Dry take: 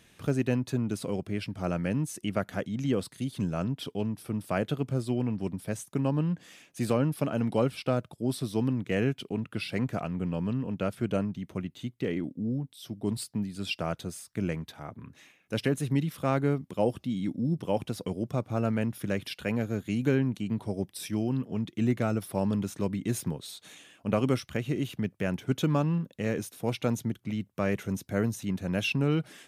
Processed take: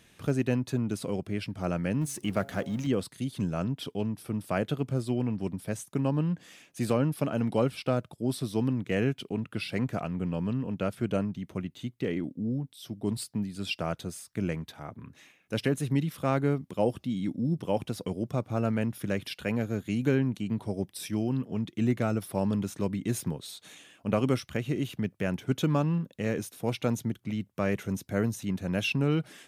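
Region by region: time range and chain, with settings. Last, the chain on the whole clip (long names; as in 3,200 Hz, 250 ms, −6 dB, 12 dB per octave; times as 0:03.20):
0:02.01–0:02.87: mu-law and A-law mismatch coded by mu + hum removal 137.5 Hz, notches 6
whole clip: no processing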